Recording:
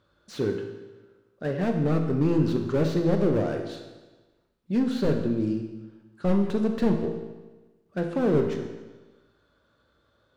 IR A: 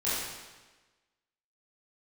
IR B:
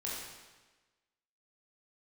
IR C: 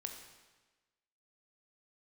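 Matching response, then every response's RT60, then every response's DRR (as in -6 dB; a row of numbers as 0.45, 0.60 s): C; 1.2, 1.2, 1.2 s; -11.5, -6.0, 3.5 dB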